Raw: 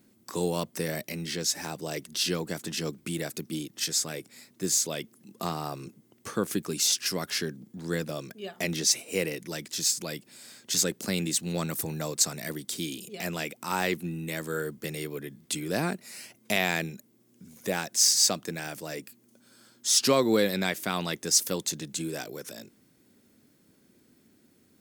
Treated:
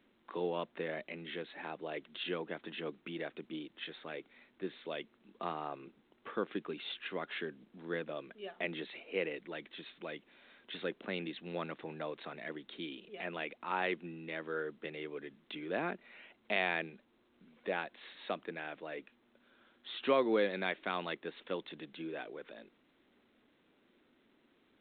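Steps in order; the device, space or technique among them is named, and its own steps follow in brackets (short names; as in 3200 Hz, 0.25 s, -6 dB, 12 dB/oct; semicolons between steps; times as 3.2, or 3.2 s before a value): telephone (BPF 310–3400 Hz; gain -5 dB; A-law 64 kbps 8000 Hz)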